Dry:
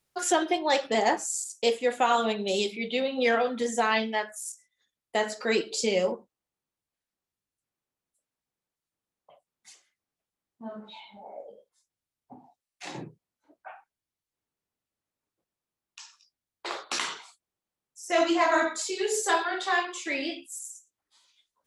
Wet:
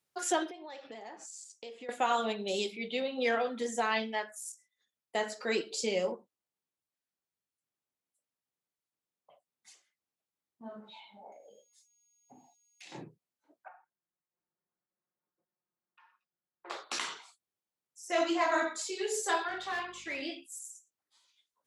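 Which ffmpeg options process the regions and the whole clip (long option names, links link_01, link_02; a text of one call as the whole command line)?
ffmpeg -i in.wav -filter_complex "[0:a]asettb=1/sr,asplit=3[link_01][link_02][link_03];[link_01]atrim=end=0.504[link_04];[link_02]atrim=start=0.5:end=1.89,asetpts=PTS-STARTPTS,afade=type=in:duration=0.004:curve=qsin,afade=type=out:start_time=1.386:duration=0.004:curve=qsin,lowpass=5200,acompressor=threshold=-37dB:ratio=8:attack=3.2:release=140:knee=1:detection=peak[link_05];[link_03]atrim=start=1.886[link_06];[link_04][link_05]acrossfade=duration=0.004:curve1=hsin:curve2=qsin[link_07];[link_07][link_06]acrossfade=duration=0.004:curve1=qsin:curve2=hsin,asettb=1/sr,asplit=3[link_08][link_09][link_10];[link_08]atrim=end=11.324[link_11];[link_09]atrim=start=11.32:end=12.92,asetpts=PTS-STARTPTS,afade=type=in:duration=0.004:curve=qsin,afade=type=out:start_time=1.596:duration=0.004:curve=qsin,highshelf=frequency=1800:width_type=q:width=1.5:gain=10,aeval=exprs='val(0)+0.000631*sin(2*PI*6600*n/s)':channel_layout=same,acompressor=threshold=-46dB:ratio=4:attack=3.2:release=140:knee=1:detection=peak[link_12];[link_10]atrim=start=12.916[link_13];[link_11][link_12]acrossfade=duration=0.004:curve1=hsin:curve2=qsin[link_14];[link_14][link_13]acrossfade=duration=0.004:curve1=qsin:curve2=hsin,asettb=1/sr,asplit=3[link_15][link_16][link_17];[link_15]atrim=end=13.684[link_18];[link_16]atrim=start=13.68:end=16.7,asetpts=PTS-STARTPTS,afade=type=in:duration=0.004:curve=qsin,afade=type=out:start_time=3.016:duration=0.004:curve=qsin,lowpass=frequency=1800:width=0.5412,lowpass=frequency=1800:width=1.3066,aecho=1:1:5.6:1,atrim=end_sample=133182,acompressor=threshold=-58dB:ratio=1.5:attack=3.2:release=140:knee=1:detection=peak[link_19];[link_17]atrim=start=16.696[link_20];[link_18][link_19]acrossfade=duration=0.004:curve1=hsin:curve2=qsin[link_21];[link_21][link_20]acrossfade=duration=0.004:curve1=qsin:curve2=hsin,asettb=1/sr,asplit=3[link_22][link_23][link_24];[link_22]atrim=end=19.484[link_25];[link_23]atrim=start=19.48:end=20.22,asetpts=PTS-STARTPTS,afade=type=in:duration=0.004:curve=qsin,afade=type=out:start_time=0.736:duration=0.004:curve=qsin,volume=25dB,asoftclip=hard,volume=-25dB,aeval=exprs='val(0)+0.00398*(sin(2*PI*50*n/s)+sin(2*PI*2*50*n/s)/2+sin(2*PI*3*50*n/s)/3+sin(2*PI*4*50*n/s)/4+sin(2*PI*5*50*n/s)/5)':channel_layout=same,asplit=2[link_26][link_27];[link_27]highpass=frequency=720:poles=1,volume=6dB,asoftclip=type=tanh:threshold=-23.5dB[link_28];[link_26][link_28]amix=inputs=2:normalize=0,lowpass=frequency=2700:poles=1,volume=-6dB[link_29];[link_24]atrim=start=20.216[link_30];[link_25][link_29]acrossfade=duration=0.004:curve1=hsin:curve2=qsin[link_31];[link_31][link_30]acrossfade=duration=0.004:curve1=qsin:curve2=hsin,highpass=75,lowshelf=frequency=120:gain=-5,volume=-5.5dB" out.wav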